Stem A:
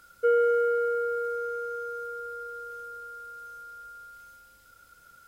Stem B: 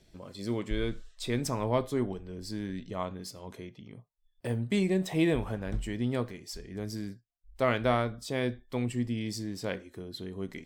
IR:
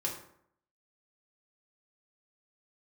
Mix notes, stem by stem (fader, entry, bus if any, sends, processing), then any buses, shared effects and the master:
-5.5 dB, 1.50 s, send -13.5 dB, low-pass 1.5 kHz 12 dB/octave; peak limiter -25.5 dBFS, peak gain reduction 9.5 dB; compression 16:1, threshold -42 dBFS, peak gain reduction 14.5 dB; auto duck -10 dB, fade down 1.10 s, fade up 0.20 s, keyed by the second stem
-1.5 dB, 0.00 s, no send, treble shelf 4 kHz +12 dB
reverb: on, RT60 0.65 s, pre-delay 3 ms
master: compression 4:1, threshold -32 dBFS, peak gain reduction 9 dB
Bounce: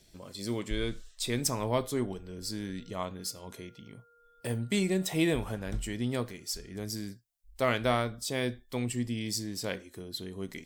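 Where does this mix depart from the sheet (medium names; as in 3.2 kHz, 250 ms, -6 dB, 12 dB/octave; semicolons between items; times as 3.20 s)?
stem A -5.5 dB -> -13.0 dB; master: missing compression 4:1, threshold -32 dBFS, peak gain reduction 9 dB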